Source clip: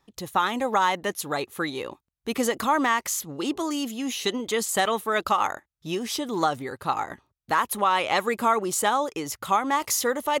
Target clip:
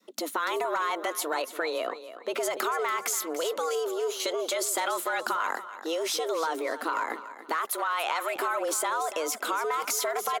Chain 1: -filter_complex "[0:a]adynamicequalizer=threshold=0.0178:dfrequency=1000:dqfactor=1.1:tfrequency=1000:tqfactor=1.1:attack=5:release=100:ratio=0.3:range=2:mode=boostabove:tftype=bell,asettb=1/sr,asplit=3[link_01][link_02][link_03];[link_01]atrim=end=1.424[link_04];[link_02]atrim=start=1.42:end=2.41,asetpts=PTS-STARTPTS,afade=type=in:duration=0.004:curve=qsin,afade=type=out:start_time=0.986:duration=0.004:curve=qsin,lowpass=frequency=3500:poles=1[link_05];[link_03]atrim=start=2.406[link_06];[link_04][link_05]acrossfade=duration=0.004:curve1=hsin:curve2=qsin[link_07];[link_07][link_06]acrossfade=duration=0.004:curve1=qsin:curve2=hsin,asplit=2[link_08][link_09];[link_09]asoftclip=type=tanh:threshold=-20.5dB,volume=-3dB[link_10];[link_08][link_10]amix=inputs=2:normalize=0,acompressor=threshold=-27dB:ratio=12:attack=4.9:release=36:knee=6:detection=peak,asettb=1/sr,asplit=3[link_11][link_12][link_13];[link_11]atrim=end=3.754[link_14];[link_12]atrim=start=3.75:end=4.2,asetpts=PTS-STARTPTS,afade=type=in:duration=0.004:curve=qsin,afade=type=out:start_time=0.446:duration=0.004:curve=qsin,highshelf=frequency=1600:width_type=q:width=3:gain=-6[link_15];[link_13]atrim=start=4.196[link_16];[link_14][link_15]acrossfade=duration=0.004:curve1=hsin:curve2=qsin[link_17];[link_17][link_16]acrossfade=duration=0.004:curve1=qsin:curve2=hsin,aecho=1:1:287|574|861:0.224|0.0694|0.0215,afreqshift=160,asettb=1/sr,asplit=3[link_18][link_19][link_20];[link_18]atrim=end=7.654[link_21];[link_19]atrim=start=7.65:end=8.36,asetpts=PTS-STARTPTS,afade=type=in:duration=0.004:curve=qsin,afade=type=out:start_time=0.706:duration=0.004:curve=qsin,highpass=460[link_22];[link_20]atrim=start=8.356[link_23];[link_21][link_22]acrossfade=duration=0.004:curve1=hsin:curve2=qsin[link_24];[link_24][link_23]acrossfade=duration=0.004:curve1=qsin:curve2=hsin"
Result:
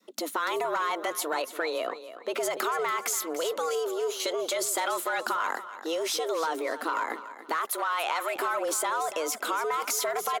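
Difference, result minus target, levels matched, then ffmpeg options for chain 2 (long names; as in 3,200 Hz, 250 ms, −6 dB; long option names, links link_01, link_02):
soft clipping: distortion +11 dB
-filter_complex "[0:a]adynamicequalizer=threshold=0.0178:dfrequency=1000:dqfactor=1.1:tfrequency=1000:tqfactor=1.1:attack=5:release=100:ratio=0.3:range=2:mode=boostabove:tftype=bell,asettb=1/sr,asplit=3[link_01][link_02][link_03];[link_01]atrim=end=1.424[link_04];[link_02]atrim=start=1.42:end=2.41,asetpts=PTS-STARTPTS,afade=type=in:duration=0.004:curve=qsin,afade=type=out:start_time=0.986:duration=0.004:curve=qsin,lowpass=frequency=3500:poles=1[link_05];[link_03]atrim=start=2.406[link_06];[link_04][link_05]acrossfade=duration=0.004:curve1=hsin:curve2=qsin[link_07];[link_07][link_06]acrossfade=duration=0.004:curve1=qsin:curve2=hsin,asplit=2[link_08][link_09];[link_09]asoftclip=type=tanh:threshold=-10.5dB,volume=-3dB[link_10];[link_08][link_10]amix=inputs=2:normalize=0,acompressor=threshold=-27dB:ratio=12:attack=4.9:release=36:knee=6:detection=peak,asettb=1/sr,asplit=3[link_11][link_12][link_13];[link_11]atrim=end=3.754[link_14];[link_12]atrim=start=3.75:end=4.2,asetpts=PTS-STARTPTS,afade=type=in:duration=0.004:curve=qsin,afade=type=out:start_time=0.446:duration=0.004:curve=qsin,highshelf=frequency=1600:width_type=q:width=3:gain=-6[link_15];[link_13]atrim=start=4.196[link_16];[link_14][link_15]acrossfade=duration=0.004:curve1=hsin:curve2=qsin[link_17];[link_17][link_16]acrossfade=duration=0.004:curve1=qsin:curve2=hsin,aecho=1:1:287|574|861:0.224|0.0694|0.0215,afreqshift=160,asettb=1/sr,asplit=3[link_18][link_19][link_20];[link_18]atrim=end=7.654[link_21];[link_19]atrim=start=7.65:end=8.36,asetpts=PTS-STARTPTS,afade=type=in:duration=0.004:curve=qsin,afade=type=out:start_time=0.706:duration=0.004:curve=qsin,highpass=460[link_22];[link_20]atrim=start=8.356[link_23];[link_21][link_22]acrossfade=duration=0.004:curve1=hsin:curve2=qsin[link_24];[link_24][link_23]acrossfade=duration=0.004:curve1=qsin:curve2=hsin"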